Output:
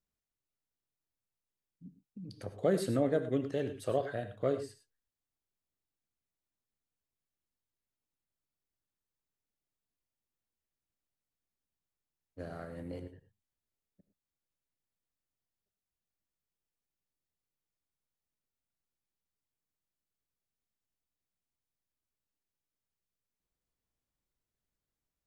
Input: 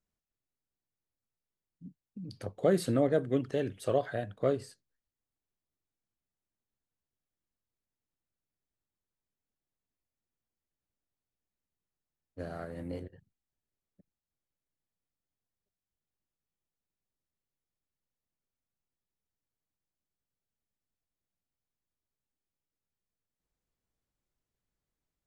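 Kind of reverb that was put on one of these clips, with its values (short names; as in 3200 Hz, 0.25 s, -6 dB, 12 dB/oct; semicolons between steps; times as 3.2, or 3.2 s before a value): non-linear reverb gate 0.13 s rising, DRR 10 dB; gain -3 dB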